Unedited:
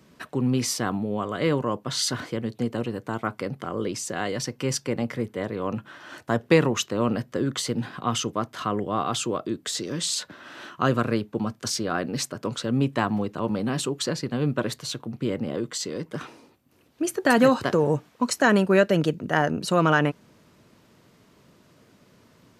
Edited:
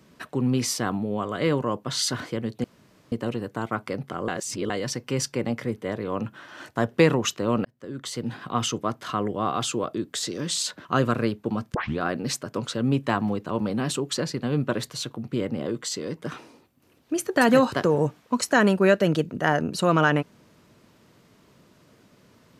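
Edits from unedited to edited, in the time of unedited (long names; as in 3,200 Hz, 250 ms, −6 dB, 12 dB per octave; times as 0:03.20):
0:02.64: splice in room tone 0.48 s
0:03.80–0:04.22: reverse
0:07.17–0:08.01: fade in
0:10.37–0:10.74: remove
0:11.63: tape start 0.25 s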